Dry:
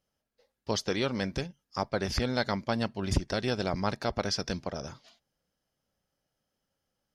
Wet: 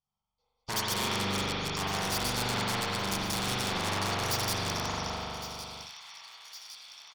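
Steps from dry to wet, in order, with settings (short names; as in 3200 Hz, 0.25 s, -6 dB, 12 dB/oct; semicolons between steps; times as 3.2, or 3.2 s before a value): reverse delay 0.17 s, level -3 dB; LPF 6900 Hz 12 dB/oct; fixed phaser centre 750 Hz, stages 4; comb 0.9 ms, depth 88%; overloaded stage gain 32.5 dB; low shelf 89 Hz -11 dB; spring tank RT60 1.8 s, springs 41 ms, chirp 55 ms, DRR -7.5 dB; gate -58 dBFS, range -24 dB; thin delay 1.11 s, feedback 58%, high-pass 2800 Hz, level -17.5 dB; spectral compressor 2:1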